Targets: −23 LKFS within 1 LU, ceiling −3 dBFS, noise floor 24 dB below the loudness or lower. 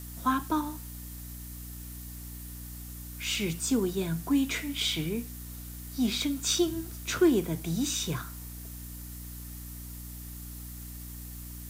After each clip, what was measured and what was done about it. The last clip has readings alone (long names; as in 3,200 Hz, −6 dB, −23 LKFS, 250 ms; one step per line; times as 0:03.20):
mains hum 60 Hz; hum harmonics up to 300 Hz; level of the hum −40 dBFS; background noise floor −42 dBFS; target noise floor −56 dBFS; integrated loudness −32.0 LKFS; sample peak −13.0 dBFS; target loudness −23.0 LKFS
→ mains-hum notches 60/120/180/240/300 Hz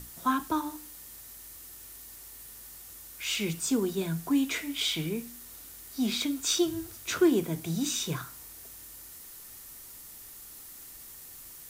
mains hum none found; background noise floor −48 dBFS; target noise floor −54 dBFS
→ broadband denoise 6 dB, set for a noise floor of −48 dBFS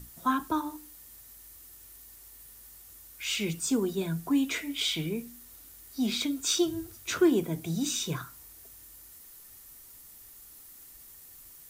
background noise floor −52 dBFS; target noise floor −54 dBFS
→ broadband denoise 6 dB, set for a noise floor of −52 dBFS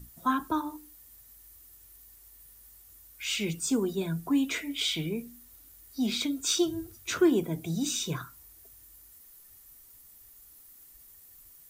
background noise floor −55 dBFS; integrated loudness −30.0 LKFS; sample peak −13.5 dBFS; target loudness −23.0 LKFS
→ level +7 dB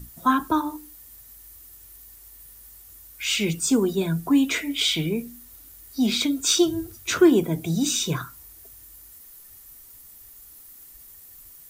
integrated loudness −23.0 LKFS; sample peak −6.5 dBFS; background noise floor −48 dBFS